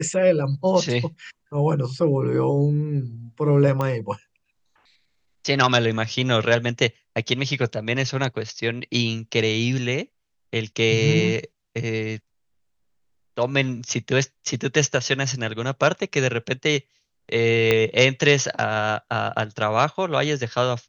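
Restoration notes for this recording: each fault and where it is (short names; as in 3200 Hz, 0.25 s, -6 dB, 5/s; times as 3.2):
3.81 pop -13 dBFS
17.71 pop -5 dBFS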